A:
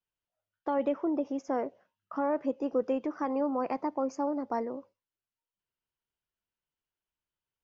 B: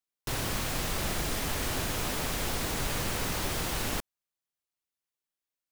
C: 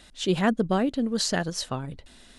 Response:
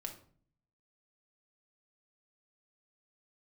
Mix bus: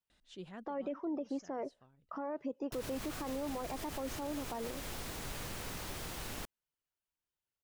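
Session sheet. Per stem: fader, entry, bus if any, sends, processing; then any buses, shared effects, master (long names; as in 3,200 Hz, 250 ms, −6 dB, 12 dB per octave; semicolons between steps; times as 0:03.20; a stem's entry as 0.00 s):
−2.5 dB, 0.00 s, no send, reverb reduction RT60 0.53 s
−11.0 dB, 2.45 s, no send, no processing
−16.0 dB, 0.10 s, no send, high-shelf EQ 6,900 Hz −8.5 dB; automatic ducking −18 dB, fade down 1.00 s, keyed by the first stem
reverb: not used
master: brickwall limiter −30.5 dBFS, peak gain reduction 10 dB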